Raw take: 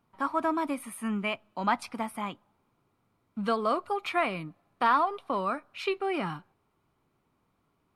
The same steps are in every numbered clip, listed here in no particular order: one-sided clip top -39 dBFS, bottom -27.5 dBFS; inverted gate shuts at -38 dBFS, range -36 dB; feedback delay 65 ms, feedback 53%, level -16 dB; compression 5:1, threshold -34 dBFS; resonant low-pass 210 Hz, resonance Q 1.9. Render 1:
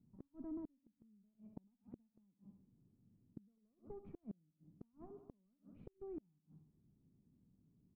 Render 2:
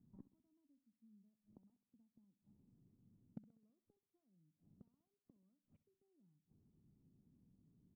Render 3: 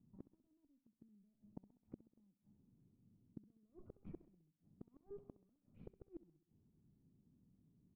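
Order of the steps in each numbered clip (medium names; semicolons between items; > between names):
feedback delay > compression > one-sided clip > resonant low-pass > inverted gate; compression > inverted gate > resonant low-pass > one-sided clip > feedback delay; one-sided clip > compression > resonant low-pass > inverted gate > feedback delay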